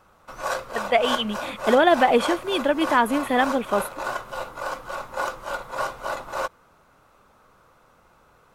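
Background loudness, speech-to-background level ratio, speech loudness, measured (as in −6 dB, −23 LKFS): −30.5 LKFS, 9.0 dB, −21.5 LKFS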